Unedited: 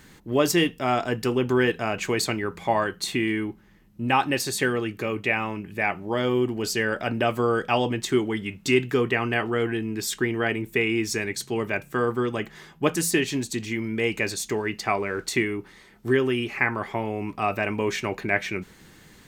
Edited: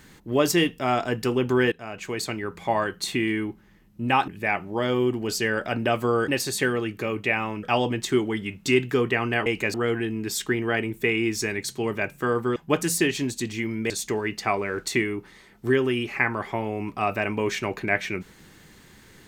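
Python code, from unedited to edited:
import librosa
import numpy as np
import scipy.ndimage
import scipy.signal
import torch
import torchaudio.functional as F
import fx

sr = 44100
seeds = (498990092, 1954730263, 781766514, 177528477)

y = fx.edit(x, sr, fx.fade_in_from(start_s=1.72, length_s=1.56, curve='qsin', floor_db=-13.5),
    fx.move(start_s=4.28, length_s=1.35, to_s=7.63),
    fx.cut(start_s=12.28, length_s=0.41),
    fx.move(start_s=14.03, length_s=0.28, to_s=9.46), tone=tone)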